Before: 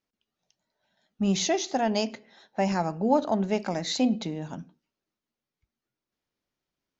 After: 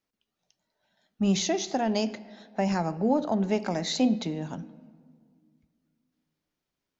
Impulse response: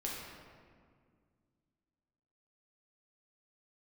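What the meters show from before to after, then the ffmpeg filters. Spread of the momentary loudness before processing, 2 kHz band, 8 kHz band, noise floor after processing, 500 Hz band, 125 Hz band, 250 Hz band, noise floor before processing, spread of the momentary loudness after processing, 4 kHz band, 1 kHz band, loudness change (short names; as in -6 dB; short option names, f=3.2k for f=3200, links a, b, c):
11 LU, -1.5 dB, n/a, under -85 dBFS, -1.0 dB, +1.0 dB, +0.5 dB, under -85 dBFS, 13 LU, -1.0 dB, -2.5 dB, -0.5 dB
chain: -filter_complex "[0:a]acrossover=split=410[a][b];[b]acompressor=threshold=-27dB:ratio=6[c];[a][c]amix=inputs=2:normalize=0,asplit=2[d][e];[1:a]atrim=start_sample=2205[f];[e][f]afir=irnorm=-1:irlink=0,volume=-17dB[g];[d][g]amix=inputs=2:normalize=0"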